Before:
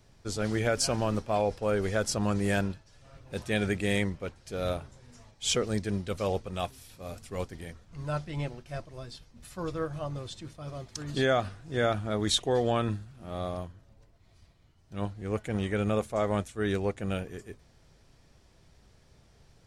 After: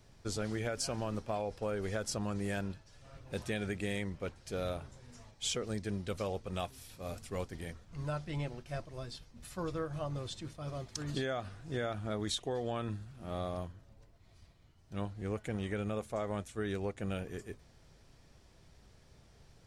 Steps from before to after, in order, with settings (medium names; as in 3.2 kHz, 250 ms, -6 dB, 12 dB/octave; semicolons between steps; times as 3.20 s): compression, threshold -32 dBFS, peak gain reduction 10.5 dB; trim -1 dB